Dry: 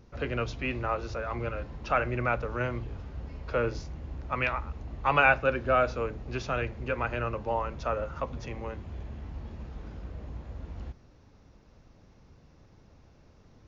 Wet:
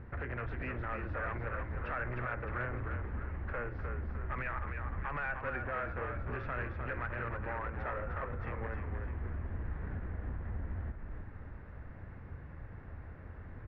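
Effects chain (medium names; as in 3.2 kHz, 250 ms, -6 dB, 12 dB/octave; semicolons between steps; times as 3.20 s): peaking EQ 85 Hz +10.5 dB 0.85 oct; compression 5:1, threshold -39 dBFS, peak gain reduction 20 dB; peak limiter -33.5 dBFS, peak gain reduction 7 dB; wavefolder -37.5 dBFS; four-pole ladder low-pass 2 kHz, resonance 60%; on a send: frequency-shifting echo 305 ms, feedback 51%, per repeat -41 Hz, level -5.5 dB; on the sum: trim +14 dB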